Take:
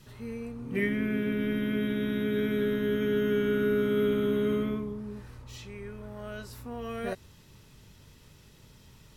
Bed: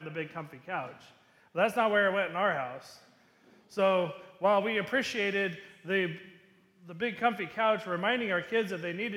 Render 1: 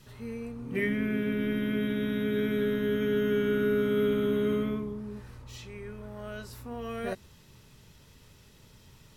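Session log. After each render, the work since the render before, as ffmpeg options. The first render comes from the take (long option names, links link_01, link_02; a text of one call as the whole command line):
ffmpeg -i in.wav -af "bandreject=frequency=50:width_type=h:width=4,bandreject=frequency=100:width_type=h:width=4,bandreject=frequency=150:width_type=h:width=4,bandreject=frequency=200:width_type=h:width=4,bandreject=frequency=250:width_type=h:width=4,bandreject=frequency=300:width_type=h:width=4,bandreject=frequency=350:width_type=h:width=4" out.wav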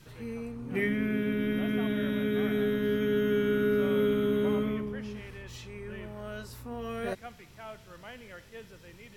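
ffmpeg -i in.wav -i bed.wav -filter_complex "[1:a]volume=-17.5dB[link_01];[0:a][link_01]amix=inputs=2:normalize=0" out.wav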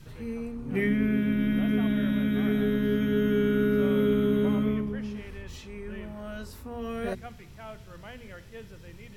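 ffmpeg -i in.wav -af "lowshelf=frequency=210:gain=10.5,bandreject=frequency=60:width_type=h:width=6,bandreject=frequency=120:width_type=h:width=6,bandreject=frequency=180:width_type=h:width=6,bandreject=frequency=240:width_type=h:width=6,bandreject=frequency=300:width_type=h:width=6,bandreject=frequency=360:width_type=h:width=6,bandreject=frequency=420:width_type=h:width=6" out.wav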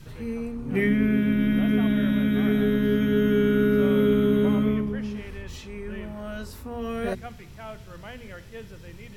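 ffmpeg -i in.wav -af "volume=3.5dB" out.wav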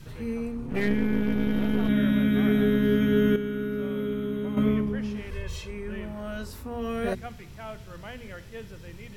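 ffmpeg -i in.wav -filter_complex "[0:a]asettb=1/sr,asplit=3[link_01][link_02][link_03];[link_01]atrim=end=0.664[link_04];[link_02]atrim=start=0.66:end=1.89,asetpts=PTS-STARTPTS,afade=type=in:duration=0.004:curve=qsin,afade=type=out:start_time=1.226:duration=0.004:curve=qsin,aeval=exprs='if(lt(val(0),0),0.251*val(0),val(0))':channel_layout=same[link_05];[link_03]atrim=start=1.886[link_06];[link_04][link_05]acrossfade=duration=0.004:curve1=hsin:curve2=qsin[link_07];[link_07][link_06]acrossfade=duration=0.004:curve1=qsin:curve2=hsin,asettb=1/sr,asplit=3[link_08][link_09][link_10];[link_08]atrim=end=5.314[link_11];[link_09]atrim=start=5.31:end=5.71,asetpts=PTS-STARTPTS,afade=type=in:duration=0.004:curve=qsin,afade=type=out:start_time=0.396:duration=0.004:curve=qsin,aecho=1:1:1.9:0.83,atrim=end_sample=17640[link_12];[link_10]atrim=start=5.706[link_13];[link_11][link_12]acrossfade=duration=0.004:curve1=hsin:curve2=qsin[link_14];[link_14][link_13]acrossfade=duration=0.004:curve1=qsin:curve2=hsin,asplit=3[link_15][link_16][link_17];[link_15]atrim=end=3.362[link_18];[link_16]atrim=start=3.358:end=4.572,asetpts=PTS-STARTPTS,volume=-9.5dB[link_19];[link_17]atrim=start=4.568[link_20];[link_18][link_19]acrossfade=duration=0.004:curve1=hsin:curve2=hsin[link_21];[link_21][link_20]acrossfade=duration=0.004:curve1=hsin:curve2=hsin" out.wav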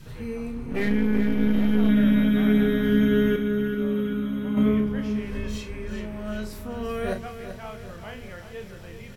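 ffmpeg -i in.wav -filter_complex "[0:a]asplit=2[link_01][link_02];[link_02]adelay=33,volume=-7dB[link_03];[link_01][link_03]amix=inputs=2:normalize=0,aecho=1:1:385|770|1155|1540|1925|2310:0.316|0.171|0.0922|0.0498|0.0269|0.0145" out.wav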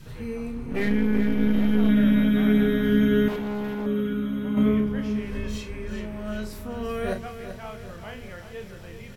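ffmpeg -i in.wav -filter_complex "[0:a]asettb=1/sr,asplit=3[link_01][link_02][link_03];[link_01]atrim=end=3.284[link_04];[link_02]atrim=start=3.28:end=3.86,asetpts=PTS-STARTPTS,afade=type=in:duration=0.004:curve=qsin,afade=type=out:start_time=0.576:duration=0.004:curve=qsin,asoftclip=type=hard:threshold=-27dB[link_05];[link_03]atrim=start=3.856[link_06];[link_04][link_05]acrossfade=duration=0.004:curve1=hsin:curve2=qsin[link_07];[link_07][link_06]acrossfade=duration=0.004:curve1=qsin:curve2=hsin" out.wav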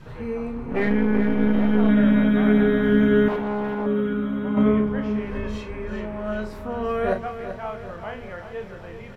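ffmpeg -i in.wav -af "lowpass=frequency=2500:poles=1,equalizer=frequency=880:width=0.56:gain=9" out.wav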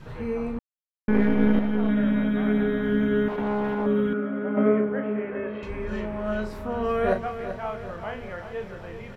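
ffmpeg -i in.wav -filter_complex "[0:a]asettb=1/sr,asplit=3[link_01][link_02][link_03];[link_01]atrim=end=4.134[link_04];[link_02]atrim=start=4.13:end=5.63,asetpts=PTS-STARTPTS,afade=type=in:duration=0.004:curve=qsin,afade=type=out:start_time=1.496:duration=0.004:curve=qsin,highpass=250,equalizer=frequency=380:width_type=q:width=4:gain=3,equalizer=frequency=600:width_type=q:width=4:gain=5,equalizer=frequency=1000:width_type=q:width=4:gain=-8,equalizer=frequency=1400:width_type=q:width=4:gain=3,lowpass=frequency=2400:width=0.5412,lowpass=frequency=2400:width=1.3066[link_05];[link_03]atrim=start=5.626[link_06];[link_04][link_05]acrossfade=duration=0.004:curve1=hsin:curve2=qsin[link_07];[link_07][link_06]acrossfade=duration=0.004:curve1=qsin:curve2=hsin,asplit=5[link_08][link_09][link_10][link_11][link_12];[link_08]atrim=end=0.59,asetpts=PTS-STARTPTS,afade=type=out:start_time=0.586:duration=0.004:curve=hsin[link_13];[link_09]atrim=start=0.59:end=1.08,asetpts=PTS-STARTPTS,volume=0[link_14];[link_10]atrim=start=1.08:end=1.592,asetpts=PTS-STARTPTS,afade=type=in:duration=0.004:curve=hsin[link_15];[link_11]atrim=start=1.588:end=3.382,asetpts=PTS-STARTPTS,volume=-5.5dB[link_16];[link_12]atrim=start=3.378[link_17];[link_13][link_14][link_15]concat=n=3:v=0:a=1[link_18];[link_18][link_16]acrossfade=duration=0.004:curve1=hsin:curve2=hsin[link_19];[link_19][link_17]acrossfade=duration=0.004:curve1=hsin:curve2=hsin" out.wav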